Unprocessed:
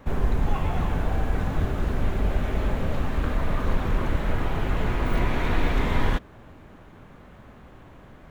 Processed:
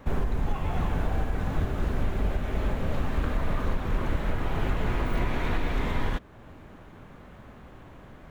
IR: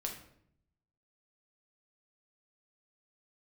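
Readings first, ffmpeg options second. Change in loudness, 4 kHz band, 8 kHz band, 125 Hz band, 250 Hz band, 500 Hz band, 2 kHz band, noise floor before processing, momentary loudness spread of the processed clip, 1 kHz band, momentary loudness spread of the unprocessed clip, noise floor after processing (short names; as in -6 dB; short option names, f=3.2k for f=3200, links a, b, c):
-3.0 dB, -3.5 dB, n/a, -3.0 dB, -3.0 dB, -3.0 dB, -3.5 dB, -48 dBFS, 19 LU, -3.0 dB, 3 LU, -49 dBFS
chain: -af "alimiter=limit=-16.5dB:level=0:latency=1:release=434"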